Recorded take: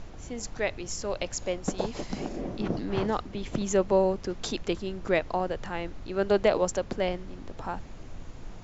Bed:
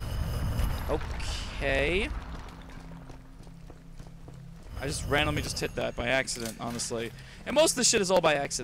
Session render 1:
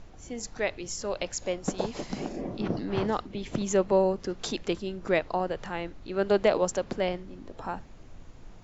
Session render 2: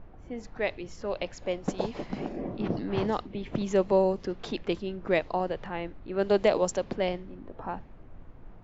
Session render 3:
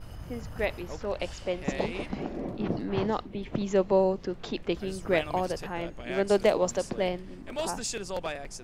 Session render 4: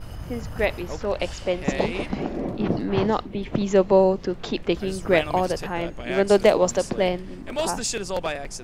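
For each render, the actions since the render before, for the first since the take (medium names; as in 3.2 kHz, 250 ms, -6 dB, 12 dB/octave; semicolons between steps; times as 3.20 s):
noise print and reduce 6 dB
dynamic bell 1.4 kHz, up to -4 dB, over -48 dBFS, Q 3; level-controlled noise filter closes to 1.4 kHz, open at -19.5 dBFS
add bed -10.5 dB
trim +6.5 dB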